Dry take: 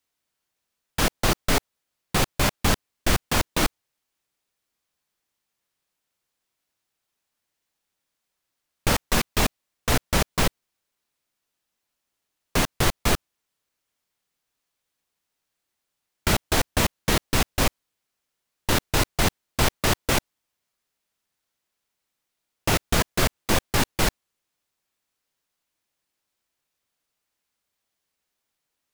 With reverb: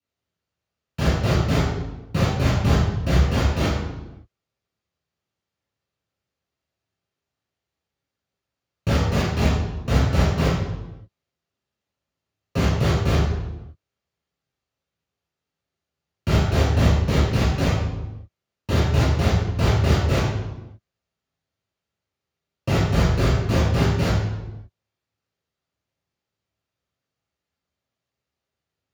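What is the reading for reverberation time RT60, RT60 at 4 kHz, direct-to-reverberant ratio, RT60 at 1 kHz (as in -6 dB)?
1.0 s, 0.75 s, -8.5 dB, 0.95 s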